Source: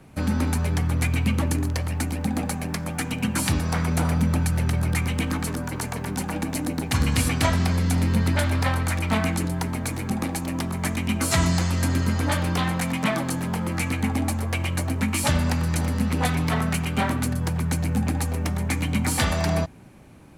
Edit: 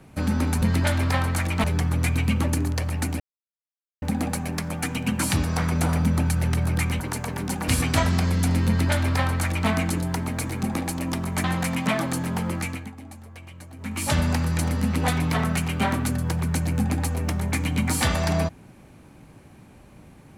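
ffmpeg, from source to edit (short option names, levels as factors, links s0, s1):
-filter_complex "[0:a]asplit=9[s0][s1][s2][s3][s4][s5][s6][s7][s8];[s0]atrim=end=0.622[s9];[s1]atrim=start=8.138:end=9.162[s10];[s2]atrim=start=0.618:end=2.18,asetpts=PTS-STARTPTS,afade=t=out:st=1.558:d=0.004:c=hsin,apad=pad_dur=0.82[s11];[s3]atrim=start=2.18:end=5.162,asetpts=PTS-STARTPTS,afade=t=in:d=0.004:c=hsin[s12];[s4]atrim=start=5.678:end=6.362[s13];[s5]atrim=start=7.148:end=10.912[s14];[s6]atrim=start=12.608:end=14.08,asetpts=PTS-STARTPTS,afade=t=out:st=1.052:d=0.42:silence=0.141254[s15];[s7]atrim=start=14.08:end=14.93,asetpts=PTS-STARTPTS,volume=0.141[s16];[s8]atrim=start=14.93,asetpts=PTS-STARTPTS,afade=t=in:d=0.42:silence=0.141254[s17];[s9][s10]acrossfade=d=0.004:c1=hsin:c2=hsin[s18];[s11][s12]concat=n=2:v=0:a=1[s19];[s18][s19]acrossfade=d=0.004:c1=hsin:c2=hsin[s20];[s20][s13]acrossfade=d=0.004:c1=hsin:c2=hsin[s21];[s21][s14]acrossfade=d=0.004:c1=hsin:c2=hsin[s22];[s15][s16][s17]concat=n=3:v=0:a=1[s23];[s22][s23]acrossfade=d=0.004:c1=hsin:c2=hsin"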